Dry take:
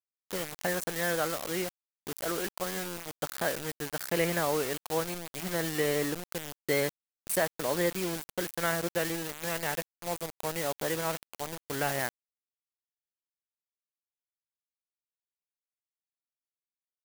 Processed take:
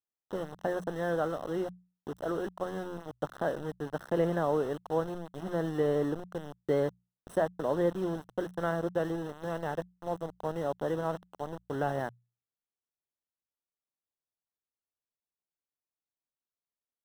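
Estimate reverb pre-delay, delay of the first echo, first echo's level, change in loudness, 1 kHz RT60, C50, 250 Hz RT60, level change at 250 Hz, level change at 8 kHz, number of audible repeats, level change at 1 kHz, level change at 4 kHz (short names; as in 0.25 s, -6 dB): none, none, none, -1.5 dB, none, none, none, +1.5 dB, under -20 dB, none, -0.5 dB, -14.0 dB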